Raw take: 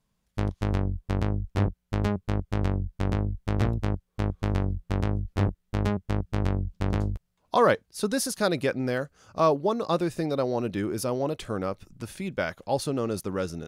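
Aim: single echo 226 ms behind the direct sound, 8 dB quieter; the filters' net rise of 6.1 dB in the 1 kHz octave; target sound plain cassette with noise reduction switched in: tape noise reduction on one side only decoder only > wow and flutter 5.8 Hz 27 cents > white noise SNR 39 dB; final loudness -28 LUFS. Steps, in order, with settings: peaking EQ 1 kHz +7.5 dB; delay 226 ms -8 dB; tape noise reduction on one side only decoder only; wow and flutter 5.8 Hz 27 cents; white noise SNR 39 dB; trim -2 dB

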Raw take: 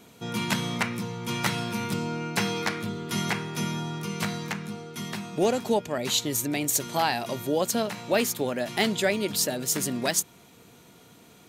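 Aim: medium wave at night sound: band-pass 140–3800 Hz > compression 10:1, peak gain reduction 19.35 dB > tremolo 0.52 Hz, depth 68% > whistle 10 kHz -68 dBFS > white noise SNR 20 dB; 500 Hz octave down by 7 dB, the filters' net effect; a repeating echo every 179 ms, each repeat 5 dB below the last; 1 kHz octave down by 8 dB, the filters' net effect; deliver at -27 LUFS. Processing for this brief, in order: band-pass 140–3800 Hz; peaking EQ 500 Hz -6.5 dB; peaking EQ 1 kHz -8.5 dB; feedback delay 179 ms, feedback 56%, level -5 dB; compression 10:1, threshold -42 dBFS; tremolo 0.52 Hz, depth 68%; whistle 10 kHz -68 dBFS; white noise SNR 20 dB; trim +21 dB

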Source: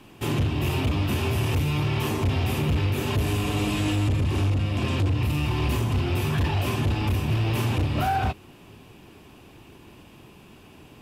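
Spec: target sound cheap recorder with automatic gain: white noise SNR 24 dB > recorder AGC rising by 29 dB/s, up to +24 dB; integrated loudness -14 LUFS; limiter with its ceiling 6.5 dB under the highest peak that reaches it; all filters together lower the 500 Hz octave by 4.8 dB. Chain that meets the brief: peaking EQ 500 Hz -7 dB; peak limiter -24.5 dBFS; white noise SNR 24 dB; recorder AGC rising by 29 dB/s, up to +24 dB; trim +18 dB

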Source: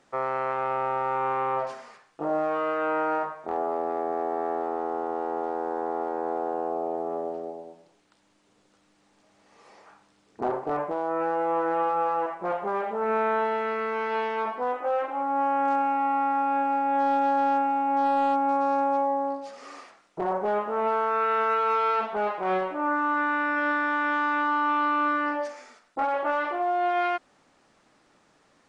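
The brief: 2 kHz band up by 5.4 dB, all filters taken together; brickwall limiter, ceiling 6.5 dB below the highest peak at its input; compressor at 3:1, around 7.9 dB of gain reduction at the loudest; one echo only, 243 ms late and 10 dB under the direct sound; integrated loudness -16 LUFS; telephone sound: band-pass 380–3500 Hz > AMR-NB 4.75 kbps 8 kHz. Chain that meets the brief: peaking EQ 2 kHz +8.5 dB; compression 3:1, threshold -30 dBFS; peak limiter -25.5 dBFS; band-pass 380–3500 Hz; delay 243 ms -10 dB; trim +18.5 dB; AMR-NB 4.75 kbps 8 kHz

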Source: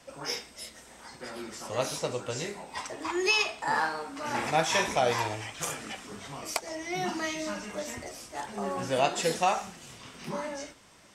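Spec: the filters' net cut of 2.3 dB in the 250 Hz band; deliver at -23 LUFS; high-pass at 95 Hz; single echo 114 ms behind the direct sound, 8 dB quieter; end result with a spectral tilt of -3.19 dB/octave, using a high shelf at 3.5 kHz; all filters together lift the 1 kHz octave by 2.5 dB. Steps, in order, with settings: high-pass 95 Hz; peaking EQ 250 Hz -3.5 dB; peaking EQ 1 kHz +4 dB; treble shelf 3.5 kHz -6 dB; delay 114 ms -8 dB; trim +7 dB

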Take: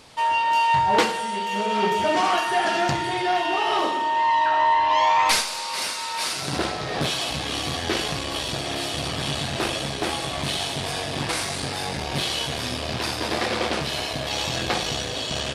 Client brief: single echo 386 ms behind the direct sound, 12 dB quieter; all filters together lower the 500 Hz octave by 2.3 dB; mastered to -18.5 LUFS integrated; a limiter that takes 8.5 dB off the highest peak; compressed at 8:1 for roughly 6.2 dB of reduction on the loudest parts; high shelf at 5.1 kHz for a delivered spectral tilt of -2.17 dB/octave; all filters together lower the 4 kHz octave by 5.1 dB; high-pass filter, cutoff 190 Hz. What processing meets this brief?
high-pass 190 Hz; peaking EQ 500 Hz -3 dB; peaking EQ 4 kHz -9 dB; treble shelf 5.1 kHz +5 dB; compression 8:1, threshold -23 dBFS; peak limiter -21 dBFS; delay 386 ms -12 dB; trim +10.5 dB

